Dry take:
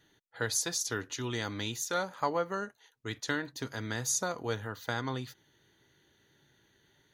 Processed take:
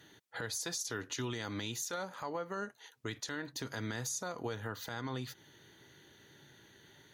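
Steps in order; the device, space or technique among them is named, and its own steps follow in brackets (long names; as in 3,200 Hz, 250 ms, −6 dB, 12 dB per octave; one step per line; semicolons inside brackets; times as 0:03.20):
podcast mastering chain (high-pass filter 78 Hz; de-essing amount 50%; downward compressor 3 to 1, threshold −44 dBFS, peak gain reduction 14.5 dB; brickwall limiter −35.5 dBFS, peak gain reduction 11 dB; level +8 dB; MP3 112 kbit/s 44,100 Hz)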